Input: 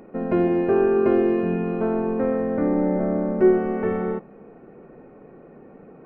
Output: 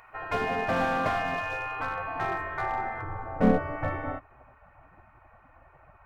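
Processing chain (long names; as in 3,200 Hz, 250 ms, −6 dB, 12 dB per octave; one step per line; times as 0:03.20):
gate on every frequency bin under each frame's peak −15 dB weak
tilt shelving filter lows −4.5 dB, about 660 Hz, from 0:03.01 lows +4.5 dB
slew-rate limiting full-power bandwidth 40 Hz
level +4.5 dB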